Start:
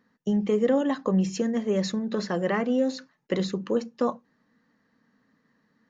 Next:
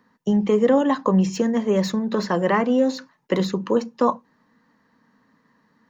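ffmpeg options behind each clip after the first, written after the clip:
-filter_complex "[0:a]equalizer=f=980:w=4:g=9,acrossover=split=290|2500[a][b][c];[c]asoftclip=type=tanh:threshold=-32dB[d];[a][b][d]amix=inputs=3:normalize=0,volume=5dB"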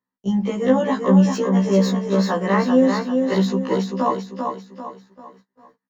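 -filter_complex "[0:a]asplit=2[a][b];[b]aecho=0:1:393|786|1179|1572|1965:0.562|0.225|0.09|0.036|0.0144[c];[a][c]amix=inputs=2:normalize=0,agate=range=-26dB:threshold=-49dB:ratio=16:detection=peak,afftfilt=real='re*1.73*eq(mod(b,3),0)':imag='im*1.73*eq(mod(b,3),0)':win_size=2048:overlap=0.75,volume=2.5dB"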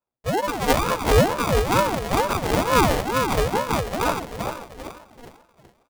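-af "aecho=1:1:149|298|447|596:0.211|0.0972|0.0447|0.0206,acrusher=samples=37:mix=1:aa=0.000001,aeval=exprs='val(0)*sin(2*PI*510*n/s+510*0.55/2.2*sin(2*PI*2.2*n/s))':c=same"

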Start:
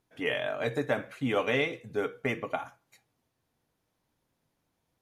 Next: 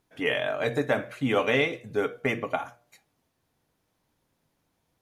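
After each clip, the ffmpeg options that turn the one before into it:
-af "bandreject=f=119.5:t=h:w=4,bandreject=f=239:t=h:w=4,bandreject=f=358.5:t=h:w=4,bandreject=f=478:t=h:w=4,bandreject=f=597.5:t=h:w=4,bandreject=f=717:t=h:w=4,volume=4dB"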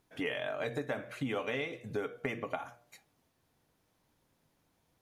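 -af "acompressor=threshold=-34dB:ratio=4"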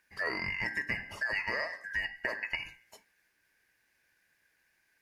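-af "afftfilt=real='real(if(lt(b,272),68*(eq(floor(b/68),0)*1+eq(floor(b/68),1)*0+eq(floor(b/68),2)*3+eq(floor(b/68),3)*2)+mod(b,68),b),0)':imag='imag(if(lt(b,272),68*(eq(floor(b/68),0)*1+eq(floor(b/68),1)*0+eq(floor(b/68),2)*3+eq(floor(b/68),3)*2)+mod(b,68),b),0)':win_size=2048:overlap=0.75,volume=1.5dB"

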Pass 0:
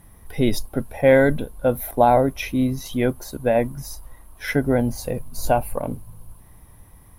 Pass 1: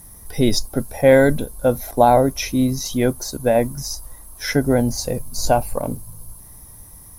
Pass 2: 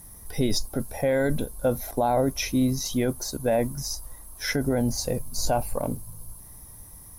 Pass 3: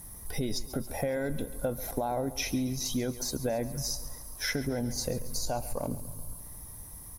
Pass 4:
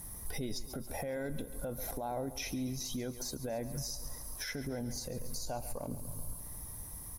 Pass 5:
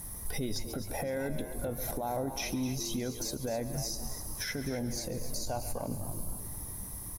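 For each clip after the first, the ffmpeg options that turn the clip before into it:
-filter_complex "[0:a]acrossover=split=6400[a][b];[b]acompressor=threshold=-49dB:ratio=4:attack=1:release=60[c];[a][c]amix=inputs=2:normalize=0,highshelf=f=4k:t=q:w=1.5:g=10.5,volume=2.5dB"
-af "alimiter=limit=-11dB:level=0:latency=1:release=22,volume=-3.5dB"
-af "acompressor=threshold=-28dB:ratio=6,aecho=1:1:138|276|414|552|690|828:0.158|0.0919|0.0533|0.0309|0.0179|0.0104"
-af "alimiter=level_in=5dB:limit=-24dB:level=0:latency=1:release=233,volume=-5dB"
-filter_complex "[0:a]asplit=5[a][b][c][d][e];[b]adelay=256,afreqshift=88,volume=-11.5dB[f];[c]adelay=512,afreqshift=176,volume=-20.6dB[g];[d]adelay=768,afreqshift=264,volume=-29.7dB[h];[e]adelay=1024,afreqshift=352,volume=-38.9dB[i];[a][f][g][h][i]amix=inputs=5:normalize=0,volume=3.5dB"

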